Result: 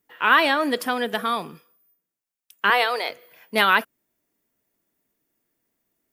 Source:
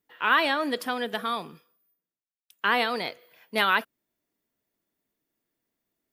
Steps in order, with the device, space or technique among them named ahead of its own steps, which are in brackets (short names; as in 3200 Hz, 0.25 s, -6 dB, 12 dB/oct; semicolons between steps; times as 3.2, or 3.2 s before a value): 2.7–3.1 HPF 400 Hz 24 dB/oct; exciter from parts (in parallel at -7.5 dB: HPF 3600 Hz 24 dB/oct + soft clip -37.5 dBFS, distortion -8 dB); on the sum: gain +5 dB